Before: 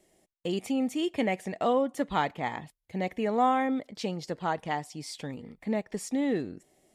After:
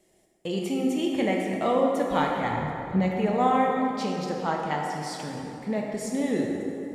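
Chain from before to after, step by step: 2.51–3 RIAA curve playback; plate-style reverb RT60 3 s, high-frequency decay 0.55×, DRR -1 dB

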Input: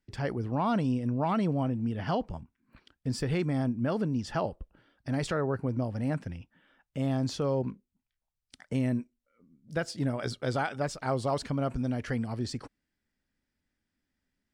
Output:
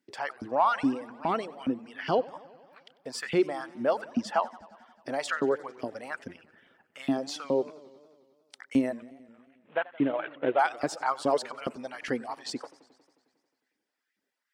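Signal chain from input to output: 9–10.59 CVSD 16 kbps; reverb removal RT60 0.67 s; LFO high-pass saw up 2.4 Hz 240–2500 Hz; warbling echo 90 ms, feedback 72%, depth 179 cents, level -21 dB; gain +2 dB

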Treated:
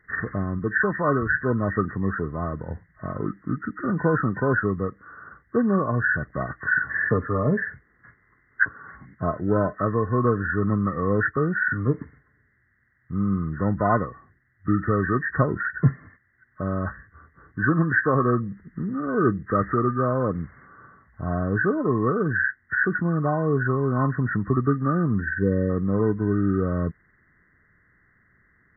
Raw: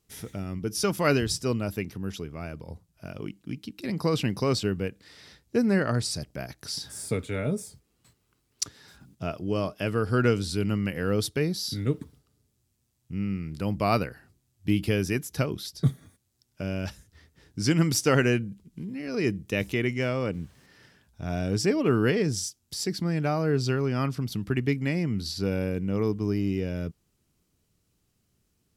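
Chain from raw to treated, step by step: nonlinear frequency compression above 1000 Hz 4:1; spectral gain 25.21–25.7, 570–1500 Hz -19 dB; vocal rider within 4 dB 0.5 s; gain +4 dB

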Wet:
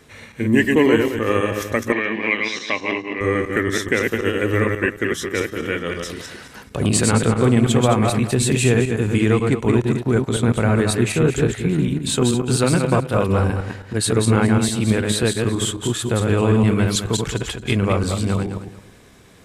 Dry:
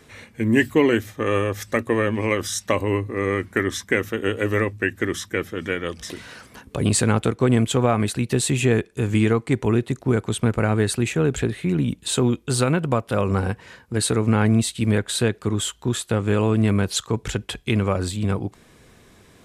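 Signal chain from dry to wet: regenerating reverse delay 0.108 s, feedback 46%, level -3 dB; 1.92–3.21 speaker cabinet 280–4600 Hz, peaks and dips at 380 Hz -6 dB, 540 Hz -10 dB, 920 Hz -3 dB, 1300 Hz -6 dB, 2300 Hz +8 dB, 4100 Hz +4 dB; gain +1 dB

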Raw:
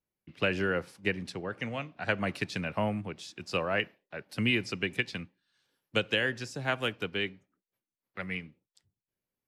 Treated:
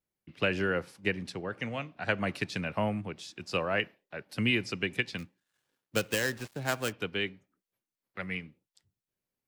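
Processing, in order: 5.18–6.93 switching dead time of 0.12 ms

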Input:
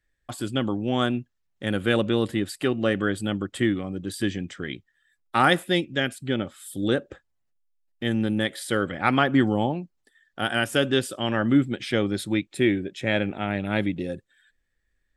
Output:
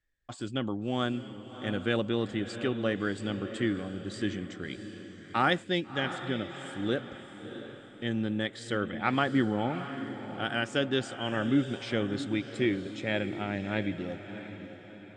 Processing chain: steep low-pass 8000 Hz 48 dB/oct; on a send: diffused feedback echo 0.672 s, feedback 44%, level -10.5 dB; on the sum: gain -6.5 dB

